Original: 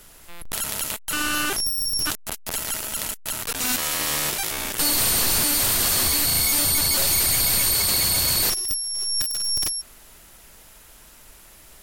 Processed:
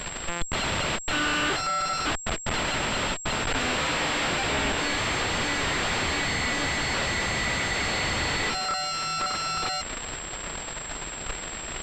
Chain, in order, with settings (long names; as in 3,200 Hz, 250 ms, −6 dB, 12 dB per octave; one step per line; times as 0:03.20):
fuzz pedal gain 50 dB, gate −45 dBFS
switching amplifier with a slow clock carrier 7,600 Hz
level −8 dB